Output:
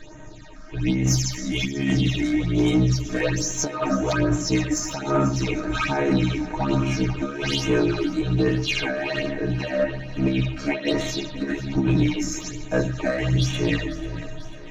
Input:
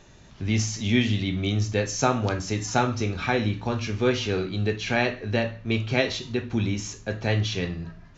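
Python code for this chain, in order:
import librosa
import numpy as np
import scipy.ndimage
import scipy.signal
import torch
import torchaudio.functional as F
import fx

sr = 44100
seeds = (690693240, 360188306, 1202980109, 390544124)

y = fx.high_shelf(x, sr, hz=5600.0, db=-7.0)
y = fx.hum_notches(y, sr, base_hz=50, count=7)
y = y + 0.87 * np.pad(y, (int(3.2 * sr / 1000.0), 0))[:len(y)]
y = fx.over_compress(y, sr, threshold_db=-24.0, ratio=-0.5)
y = fx.stretch_grains(y, sr, factor=1.8, grain_ms=29.0)
y = 10.0 ** (-20.5 / 20.0) * np.tanh(y / 10.0 ** (-20.5 / 20.0))
y = fx.phaser_stages(y, sr, stages=8, low_hz=110.0, high_hz=4800.0, hz=1.2, feedback_pct=25)
y = fx.echo_thinned(y, sr, ms=492, feedback_pct=68, hz=210.0, wet_db=-16)
y = y * librosa.db_to_amplitude(8.0)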